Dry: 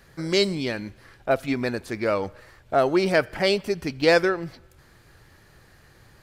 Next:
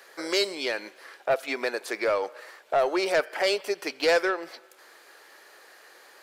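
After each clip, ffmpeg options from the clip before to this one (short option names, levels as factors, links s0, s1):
-filter_complex "[0:a]highpass=f=420:w=0.5412,highpass=f=420:w=1.3066,asplit=2[s0][s1];[s1]acompressor=threshold=0.0251:ratio=6,volume=1.33[s2];[s0][s2]amix=inputs=2:normalize=0,asoftclip=type=tanh:threshold=0.211,volume=0.794"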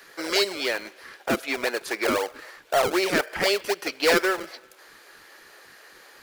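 -filter_complex "[0:a]equalizer=f=8100:w=4.9:g=-3,acrossover=split=720[s0][s1];[s0]acrusher=samples=34:mix=1:aa=0.000001:lfo=1:lforange=34:lforate=3.9[s2];[s2][s1]amix=inputs=2:normalize=0,volume=1.41"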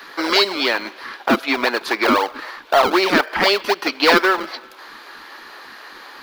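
-filter_complex "[0:a]equalizer=f=125:t=o:w=1:g=-8,equalizer=f=250:t=o:w=1:g=9,equalizer=f=500:t=o:w=1:g=-4,equalizer=f=1000:t=o:w=1:g=10,equalizer=f=4000:t=o:w=1:g=7,equalizer=f=8000:t=o:w=1:g=-9,equalizer=f=16000:t=o:w=1:g=-3,asplit=2[s0][s1];[s1]acompressor=threshold=0.0447:ratio=6,volume=0.794[s2];[s0][s2]amix=inputs=2:normalize=0,volume=1.26"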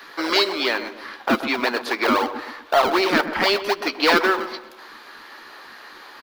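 -filter_complex "[0:a]asplit=2[s0][s1];[s1]adelay=13,volume=0.211[s2];[s0][s2]amix=inputs=2:normalize=0,asplit=2[s3][s4];[s4]adelay=126,lowpass=f=910:p=1,volume=0.355,asplit=2[s5][s6];[s6]adelay=126,lowpass=f=910:p=1,volume=0.44,asplit=2[s7][s8];[s8]adelay=126,lowpass=f=910:p=1,volume=0.44,asplit=2[s9][s10];[s10]adelay=126,lowpass=f=910:p=1,volume=0.44,asplit=2[s11][s12];[s12]adelay=126,lowpass=f=910:p=1,volume=0.44[s13];[s3][s5][s7][s9][s11][s13]amix=inputs=6:normalize=0,volume=0.668"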